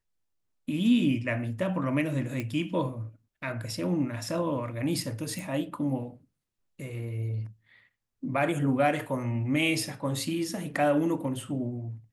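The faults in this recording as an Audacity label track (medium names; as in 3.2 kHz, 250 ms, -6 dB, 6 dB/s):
2.400000	2.400000	pop -19 dBFS
5.390000	5.390000	pop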